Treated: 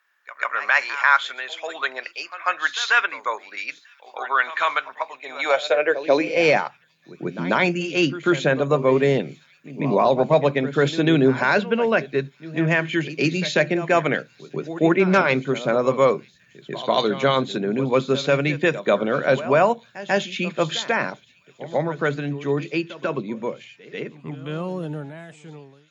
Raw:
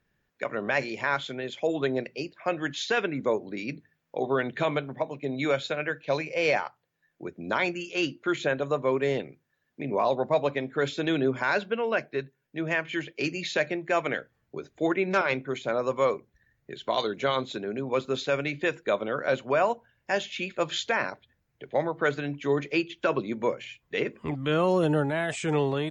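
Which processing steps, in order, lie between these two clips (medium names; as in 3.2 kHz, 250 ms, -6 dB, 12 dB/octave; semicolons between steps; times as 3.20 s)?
fade out at the end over 6.42 s; pre-echo 142 ms -14.5 dB; high-pass sweep 1.2 kHz -> 160 Hz, 5.22–6.59 s; on a send: feedback echo behind a high-pass 944 ms, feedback 76%, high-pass 3.6 kHz, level -23.5 dB; on the sum: trim +6.5 dB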